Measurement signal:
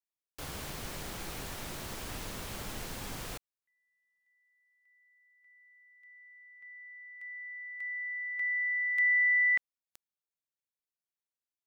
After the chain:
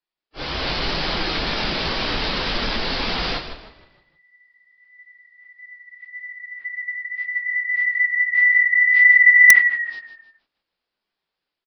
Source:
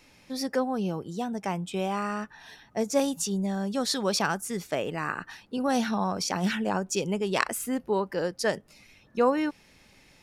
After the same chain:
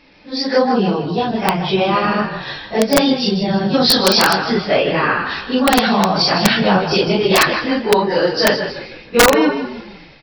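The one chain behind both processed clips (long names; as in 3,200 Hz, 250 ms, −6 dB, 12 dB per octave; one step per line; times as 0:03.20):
random phases in long frames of 100 ms
automatic gain control gain up to 8.5 dB
downsampling to 11,025 Hz
high-shelf EQ 4,000 Hz +10.5 dB
in parallel at +2 dB: downward compressor 8 to 1, threshold −31 dBFS
on the sum: echo with shifted repeats 156 ms, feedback 41%, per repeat −35 Hz, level −8.5 dB
wrap-around overflow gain 5.5 dB
parametric band 100 Hz −10.5 dB 0.84 octaves
one half of a high-frequency compander decoder only
level +3 dB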